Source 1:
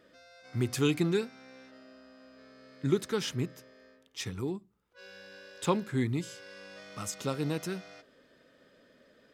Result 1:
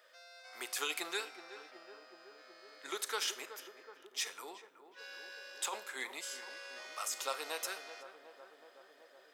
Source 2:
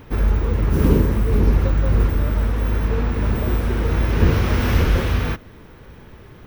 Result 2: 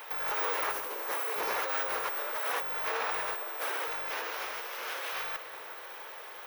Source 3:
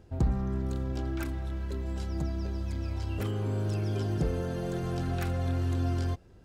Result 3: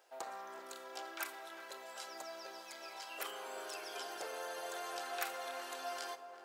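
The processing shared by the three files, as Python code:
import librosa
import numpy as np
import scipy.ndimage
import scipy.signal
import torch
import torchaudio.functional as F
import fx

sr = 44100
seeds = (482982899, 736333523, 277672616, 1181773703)

p1 = scipy.signal.sosfilt(scipy.signal.butter(4, 630.0, 'highpass', fs=sr, output='sos'), x)
p2 = fx.high_shelf(p1, sr, hz=8500.0, db=7.5)
p3 = fx.over_compress(p2, sr, threshold_db=-35.0, ratio=-1.0)
p4 = p3 + fx.echo_filtered(p3, sr, ms=373, feedback_pct=80, hz=1300.0, wet_db=-10.5, dry=0)
y = fx.rev_schroeder(p4, sr, rt60_s=0.45, comb_ms=27, drr_db=14.5)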